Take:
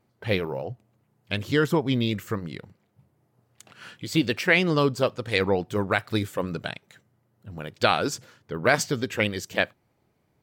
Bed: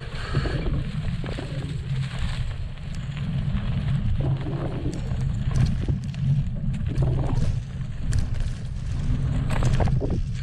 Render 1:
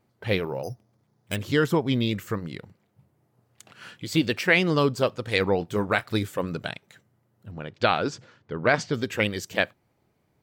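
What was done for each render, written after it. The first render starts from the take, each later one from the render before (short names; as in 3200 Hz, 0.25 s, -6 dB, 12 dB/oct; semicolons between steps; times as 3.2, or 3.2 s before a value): 0.63–1.36 careless resampling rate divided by 8×, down filtered, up hold; 5.58–6.04 doubler 24 ms -11 dB; 7.51–8.94 air absorption 120 m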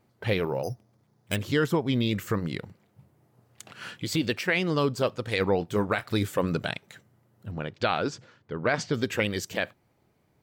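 vocal rider within 4 dB 0.5 s; limiter -13.5 dBFS, peak gain reduction 8.5 dB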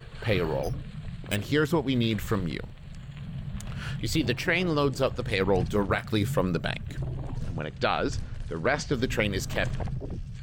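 add bed -10.5 dB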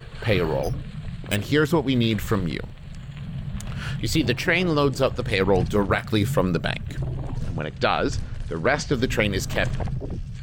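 gain +4.5 dB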